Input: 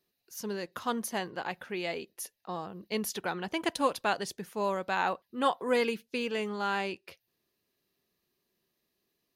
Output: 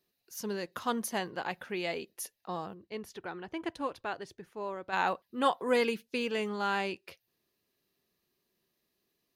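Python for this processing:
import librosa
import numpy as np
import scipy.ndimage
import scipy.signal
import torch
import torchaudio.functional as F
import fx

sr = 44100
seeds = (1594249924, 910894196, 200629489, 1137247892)

y = fx.curve_eq(x, sr, hz=(110.0, 200.0, 330.0, 530.0, 1700.0, 13000.0), db=(0, -11, -3, -8, -7, -20), at=(2.73, 4.92), fade=0.02)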